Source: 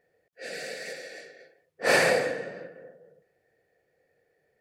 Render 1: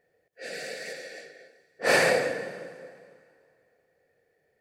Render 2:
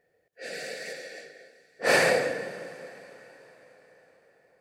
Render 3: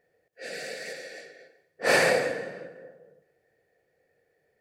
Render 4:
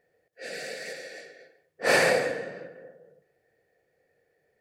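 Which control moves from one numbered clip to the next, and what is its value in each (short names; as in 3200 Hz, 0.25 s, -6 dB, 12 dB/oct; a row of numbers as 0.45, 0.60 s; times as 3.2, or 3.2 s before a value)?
plate-style reverb, RT60: 2.5, 5.2, 1.1, 0.53 s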